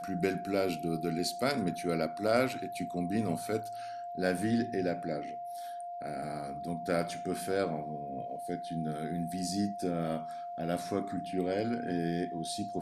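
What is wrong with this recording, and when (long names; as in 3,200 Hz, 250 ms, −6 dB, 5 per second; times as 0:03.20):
whistle 700 Hz −38 dBFS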